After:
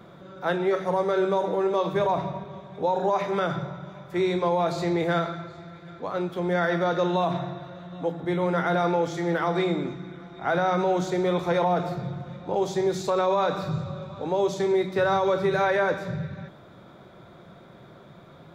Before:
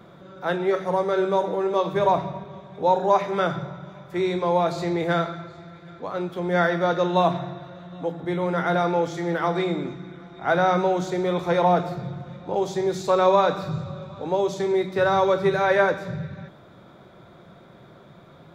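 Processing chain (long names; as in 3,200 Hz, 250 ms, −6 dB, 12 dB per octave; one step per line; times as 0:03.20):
brickwall limiter −15 dBFS, peak gain reduction 7.5 dB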